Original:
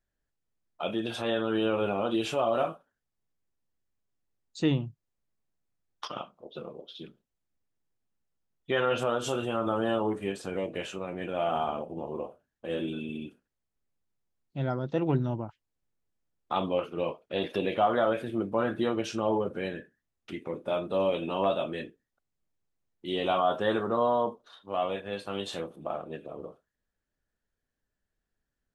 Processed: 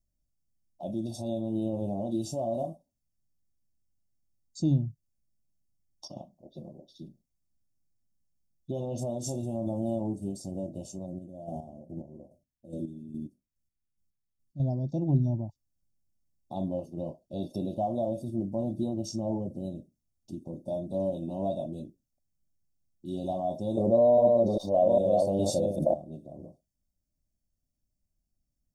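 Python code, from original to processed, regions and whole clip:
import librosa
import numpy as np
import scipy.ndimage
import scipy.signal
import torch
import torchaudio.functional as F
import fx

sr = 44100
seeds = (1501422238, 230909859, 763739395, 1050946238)

y = fx.chain(x, sr, fx.band_shelf(hz=1600.0, db=-8.5, octaves=2.5),
    fx.chopper(hz=2.4, depth_pct=60, duty_pct=30), at=(11.06, 14.6))
y = fx.chain(y, sr, fx.reverse_delay(ms=404, wet_db=-2.5),
    fx.peak_eq(hz=530.0, db=15.0, octaves=0.61),
    fx.env_flatten(amount_pct=50), at=(23.77, 25.94))
y = scipy.signal.sosfilt(scipy.signal.cheby1(3, 1.0, [580.0, 5200.0], 'bandstop', fs=sr, output='sos'), y)
y = y + 0.9 * np.pad(y, (int(1.1 * sr / 1000.0), 0))[:len(y)]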